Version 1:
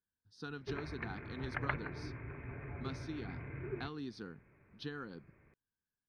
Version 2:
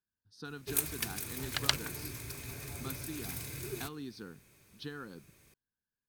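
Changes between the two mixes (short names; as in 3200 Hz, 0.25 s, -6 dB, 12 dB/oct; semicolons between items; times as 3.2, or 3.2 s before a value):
speech: remove air absorption 66 m; background: remove steep low-pass 2200 Hz 48 dB/oct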